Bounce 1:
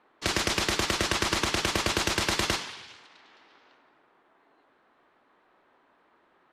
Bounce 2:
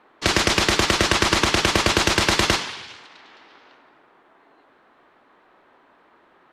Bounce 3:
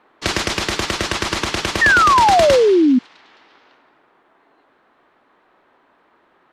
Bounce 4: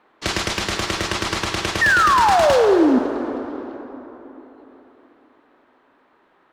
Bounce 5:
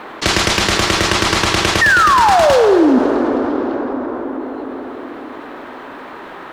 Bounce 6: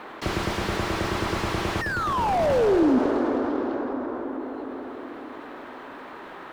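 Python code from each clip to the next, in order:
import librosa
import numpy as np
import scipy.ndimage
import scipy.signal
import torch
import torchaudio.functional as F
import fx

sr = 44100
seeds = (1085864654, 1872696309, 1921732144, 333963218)

y1 = fx.high_shelf(x, sr, hz=10000.0, db=-7.5)
y1 = y1 * librosa.db_to_amplitude(8.5)
y2 = fx.rider(y1, sr, range_db=10, speed_s=0.5)
y2 = fx.spec_paint(y2, sr, seeds[0], shape='fall', start_s=1.81, length_s=1.18, low_hz=240.0, high_hz=1900.0, level_db=-10.0)
y2 = y2 * librosa.db_to_amplitude(-2.0)
y3 = np.clip(y2, -10.0 ** (-10.0 / 20.0), 10.0 ** (-10.0 / 20.0))
y3 = fx.rev_plate(y3, sr, seeds[1], rt60_s=3.9, hf_ratio=0.45, predelay_ms=0, drr_db=6.5)
y3 = y3 * librosa.db_to_amplitude(-2.5)
y4 = fx.env_flatten(y3, sr, amount_pct=50)
y4 = y4 * librosa.db_to_amplitude(3.0)
y5 = fx.slew_limit(y4, sr, full_power_hz=170.0)
y5 = y5 * librosa.db_to_amplitude(-8.0)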